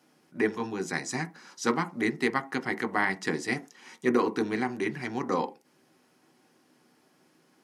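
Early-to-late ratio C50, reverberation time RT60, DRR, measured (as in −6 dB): 19.0 dB, non-exponential decay, 7.0 dB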